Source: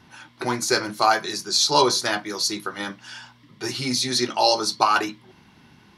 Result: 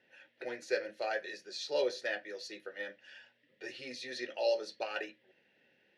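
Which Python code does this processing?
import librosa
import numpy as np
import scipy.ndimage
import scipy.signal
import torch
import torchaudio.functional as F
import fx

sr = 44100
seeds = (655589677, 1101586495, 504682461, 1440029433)

y = fx.vowel_filter(x, sr, vowel='e')
y = fx.low_shelf(y, sr, hz=460.0, db=-3.5)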